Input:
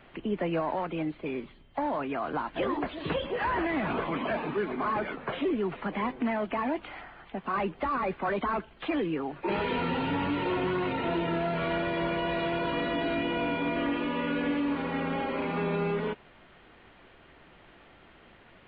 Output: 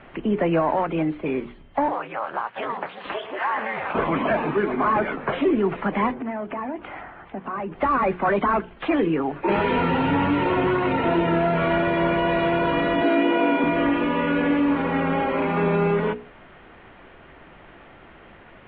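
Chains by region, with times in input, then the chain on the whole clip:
1.88–3.95 HPF 640 Hz + ring modulator 110 Hz
6.14–7.72 HPF 46 Hz + high shelf 3300 Hz -11.5 dB + compressor 3:1, threshold -37 dBFS
13.02–13.64 steep high-pass 230 Hz + low shelf 410 Hz +5 dB
whole clip: LPF 2500 Hz 12 dB/oct; notches 60/120/180/240/300/360/420/480 Hz; gain +9 dB

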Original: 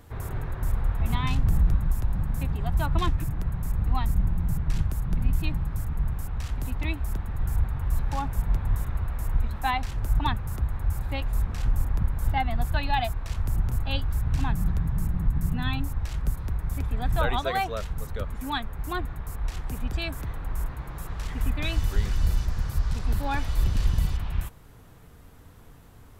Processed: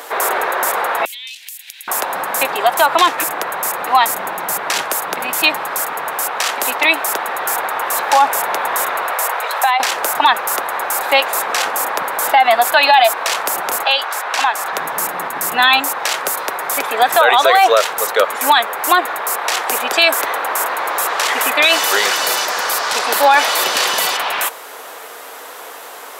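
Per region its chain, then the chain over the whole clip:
1.05–1.88 inverse Chebyshev high-pass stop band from 1300 Hz + compressor 8:1, threshold -54 dBFS
9.13–9.8 HPF 430 Hz 24 dB/oct + compressor 16:1, threshold -36 dBFS
13.84–14.73 HPF 520 Hz + high shelf 10000 Hz -11.5 dB + compressor, threshold -36 dBFS
whole clip: HPF 500 Hz 24 dB/oct; maximiser +27.5 dB; gain -1 dB

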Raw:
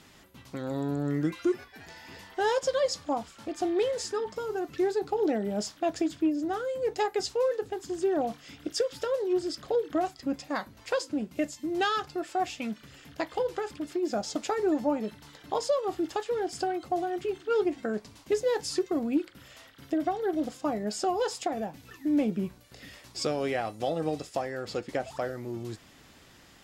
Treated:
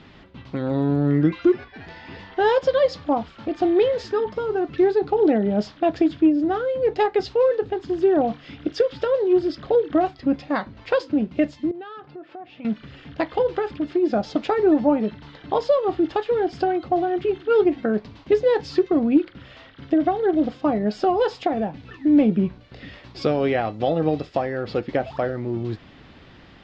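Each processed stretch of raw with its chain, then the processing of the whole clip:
11.71–12.65 tape spacing loss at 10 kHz 23 dB + compressor 3:1, threshold -48 dBFS + HPF 150 Hz
whole clip: LPF 4000 Hz 24 dB/oct; low shelf 440 Hz +5.5 dB; gain +6 dB

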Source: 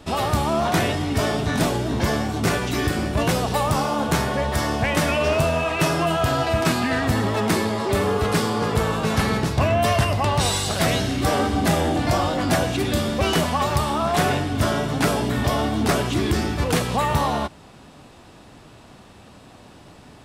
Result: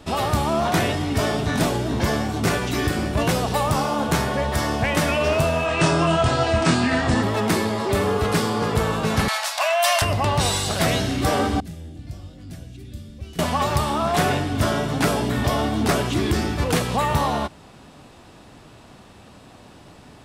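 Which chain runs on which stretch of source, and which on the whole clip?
5.66–7.23 steep low-pass 9400 Hz 72 dB/oct + doubler 24 ms -3.5 dB
9.28–10.02 steep high-pass 590 Hz 72 dB/oct + high shelf 2200 Hz +9 dB
11.6–13.39 passive tone stack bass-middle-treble 10-0-1 + short-mantissa float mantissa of 8-bit
whole clip: dry

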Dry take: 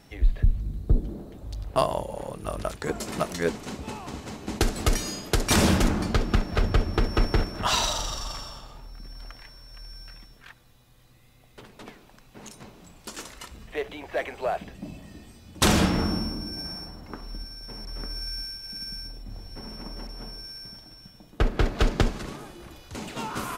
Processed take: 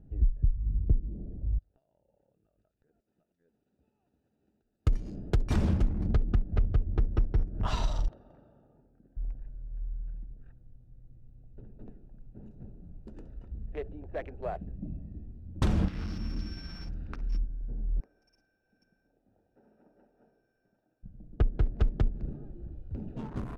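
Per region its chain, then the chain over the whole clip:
1.58–4.87 differentiator + compressor 12:1, threshold -51 dBFS
8.08–9.17 HPF 300 Hz + air absorption 250 m
15.88–17.38 block floating point 3-bit + band shelf 2600 Hz +15 dB 2.5 oct + compressor 16:1, threshold -26 dBFS
18–21.03 HPF 730 Hz + short-mantissa float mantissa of 4-bit
whole clip: Wiener smoothing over 41 samples; RIAA curve playback; compressor 6:1, threshold -13 dBFS; gain -9 dB

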